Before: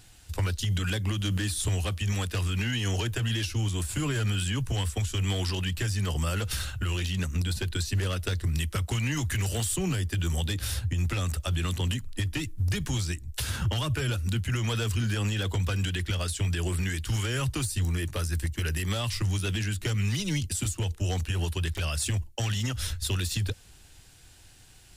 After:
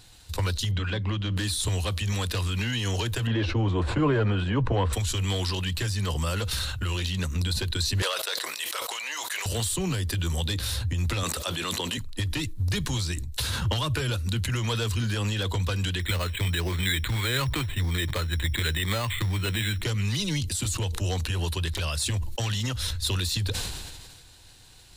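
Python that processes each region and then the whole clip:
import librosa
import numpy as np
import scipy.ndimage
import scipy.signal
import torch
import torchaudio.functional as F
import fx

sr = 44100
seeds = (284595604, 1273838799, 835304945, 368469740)

y = fx.chain(x, sr, fx.lowpass(hz=2900.0, slope=12),
    fx.hum_notches(base_hz=60, count=6), at=(0.71, 1.37))
y = fx.chain(y, sr, fx.lowpass(hz=2100.0, slope=12),
    fx.peak_eq(hz=510.0, db=10.0, octaves=2.6), at=(3.27, 4.93))
y = fx.chain(y, sr, fx.highpass(hz=560.0, slope=24),
    fx.sustainer(db_per_s=28.0), at=(8.02, 9.46))
y = fx.chain(y, sr, fx.highpass(hz=300.0, slope=12),
    fx.env_flatten(amount_pct=70), at=(11.23, 11.98))
y = fx.chain(y, sr, fx.lowpass_res(hz=2200.0, q=3.1),
    fx.resample_bad(factor=8, down='filtered', up='hold'), at=(16.0, 19.83))
y = fx.graphic_eq_31(y, sr, hz=(500, 1000, 4000), db=(4, 6, 9))
y = fx.sustainer(y, sr, db_per_s=34.0)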